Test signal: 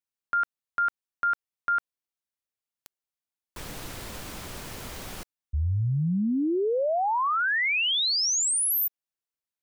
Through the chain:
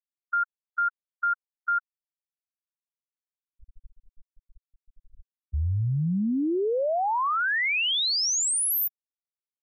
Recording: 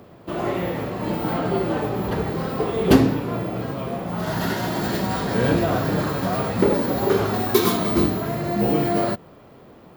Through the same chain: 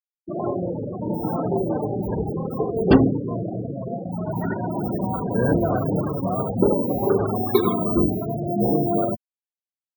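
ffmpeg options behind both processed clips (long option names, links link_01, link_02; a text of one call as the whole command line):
ffmpeg -i in.wav -af "aeval=exprs='0.841*(cos(1*acos(clip(val(0)/0.841,-1,1)))-cos(1*PI/2))+0.106*(cos(2*acos(clip(val(0)/0.841,-1,1)))-cos(2*PI/2))+0.0168*(cos(8*acos(clip(val(0)/0.841,-1,1)))-cos(8*PI/2))':channel_layout=same,afftfilt=real='re*gte(hypot(re,im),0.126)':imag='im*gte(hypot(re,im),0.126)':win_size=1024:overlap=0.75" out.wav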